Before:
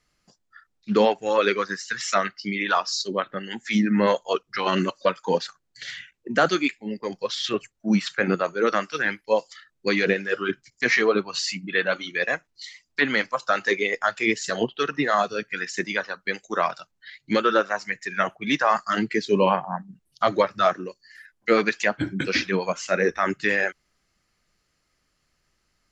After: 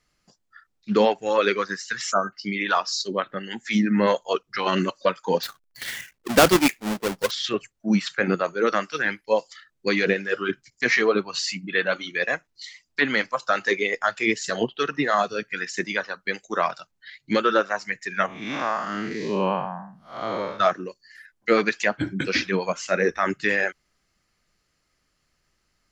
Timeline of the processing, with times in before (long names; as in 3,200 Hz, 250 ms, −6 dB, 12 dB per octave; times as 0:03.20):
0:02.12–0:02.33: time-frequency box erased 1,600–6,000 Hz
0:05.43–0:07.31: each half-wave held at its own peak
0:18.26–0:20.60: spectrum smeared in time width 197 ms